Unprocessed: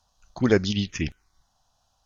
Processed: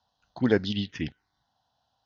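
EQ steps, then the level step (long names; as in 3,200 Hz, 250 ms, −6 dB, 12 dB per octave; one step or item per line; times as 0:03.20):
loudspeaker in its box 130–4,100 Hz, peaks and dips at 180 Hz −5 dB, 370 Hz −5 dB, 590 Hz −4 dB, 1,200 Hz −9 dB, 2,400 Hz −9 dB
0.0 dB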